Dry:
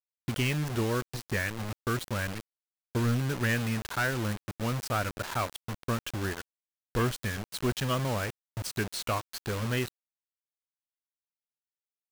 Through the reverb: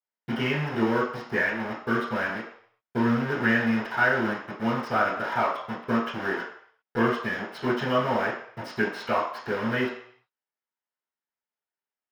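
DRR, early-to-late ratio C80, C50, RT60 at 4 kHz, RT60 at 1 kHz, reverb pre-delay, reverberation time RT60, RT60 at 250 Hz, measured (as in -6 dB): -13.0 dB, 9.0 dB, 5.0 dB, 0.65 s, 0.65 s, 3 ms, 0.60 s, 0.40 s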